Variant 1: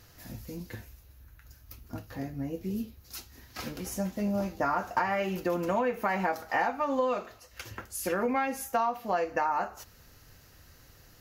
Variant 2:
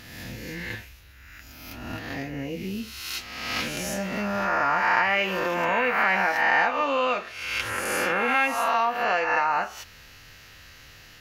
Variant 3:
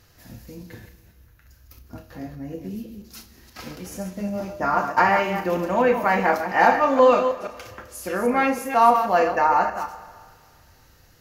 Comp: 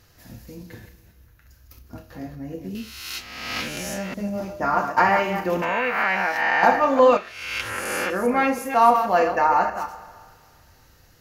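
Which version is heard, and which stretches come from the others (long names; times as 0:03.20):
3
0:02.75–0:04.14: punch in from 2
0:05.62–0:06.63: punch in from 2
0:07.17–0:08.10: punch in from 2
not used: 1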